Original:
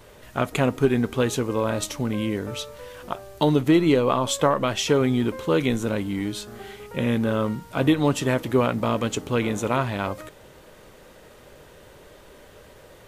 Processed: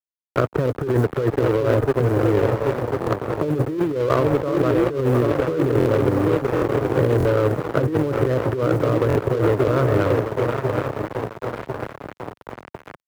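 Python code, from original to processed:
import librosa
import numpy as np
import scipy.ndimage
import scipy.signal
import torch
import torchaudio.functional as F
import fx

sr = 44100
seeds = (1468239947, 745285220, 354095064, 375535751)

y = fx.tracing_dist(x, sr, depth_ms=0.038)
y = scipy.signal.sosfilt(scipy.signal.cheby1(6, 3, 1900.0, 'lowpass', fs=sr, output='sos'), y)
y = fx.low_shelf(y, sr, hz=330.0, db=12.0)
y = fx.echo_swing(y, sr, ms=1047, ratio=3, feedback_pct=57, wet_db=-9.0)
y = fx.quant_float(y, sr, bits=4)
y = fx.tilt_shelf(y, sr, db=5.0, hz=1200.0)
y = fx.fixed_phaser(y, sr, hz=810.0, stages=6)
y = np.sign(y) * np.maximum(np.abs(y) - 10.0 ** (-27.0 / 20.0), 0.0)
y = fx.highpass(y, sr, hz=120.0, slope=6)
y = fx.over_compress(y, sr, threshold_db=-23.0, ratio=-1.0)
y = fx.buffer_glitch(y, sr, at_s=(3.0, 5.79, 6.55, 7.18, 9.08), block=1024, repeats=2)
y = fx.band_squash(y, sr, depth_pct=40)
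y = y * 10.0 ** (4.0 / 20.0)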